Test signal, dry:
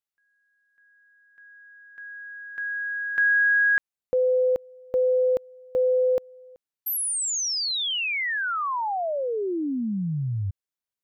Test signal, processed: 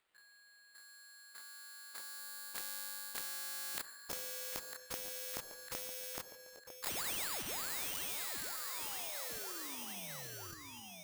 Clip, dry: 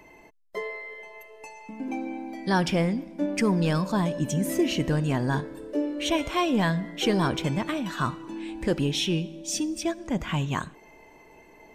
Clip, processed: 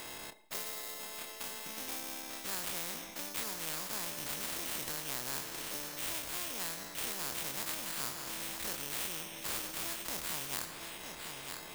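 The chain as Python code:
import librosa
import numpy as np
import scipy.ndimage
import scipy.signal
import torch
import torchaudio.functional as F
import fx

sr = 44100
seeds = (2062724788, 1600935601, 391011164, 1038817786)

y = fx.spec_dilate(x, sr, span_ms=60)
y = fx.sample_hold(y, sr, seeds[0], rate_hz=5900.0, jitter_pct=0)
y = fx.low_shelf(y, sr, hz=300.0, db=-11.5)
y = fx.echo_feedback(y, sr, ms=952, feedback_pct=32, wet_db=-18.0)
y = fx.rev_schroeder(y, sr, rt60_s=0.75, comb_ms=29, drr_db=16.5)
y = fx.rider(y, sr, range_db=5, speed_s=0.5)
y = fx.transient(y, sr, attack_db=2, sustain_db=-4)
y = fx.dynamic_eq(y, sr, hz=2600.0, q=0.81, threshold_db=-41.0, ratio=4.0, max_db=-5)
y = fx.spectral_comp(y, sr, ratio=4.0)
y = y * 10.0 ** (-5.5 / 20.0)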